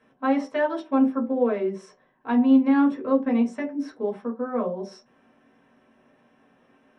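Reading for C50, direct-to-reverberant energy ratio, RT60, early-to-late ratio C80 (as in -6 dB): 11.0 dB, -3.5 dB, no single decay rate, 17.0 dB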